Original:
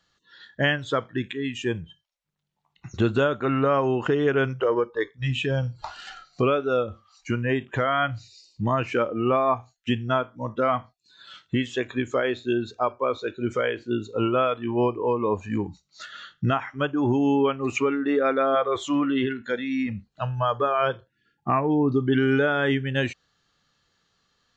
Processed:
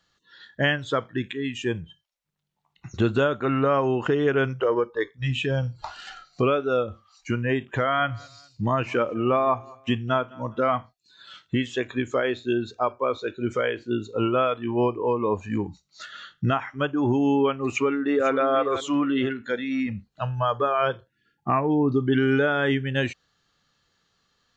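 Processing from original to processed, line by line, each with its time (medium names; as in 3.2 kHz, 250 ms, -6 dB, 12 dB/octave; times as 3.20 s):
7.67–10.74 s: feedback delay 206 ms, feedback 35%, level -23.5 dB
17.69–18.30 s: echo throw 500 ms, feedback 25%, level -10.5 dB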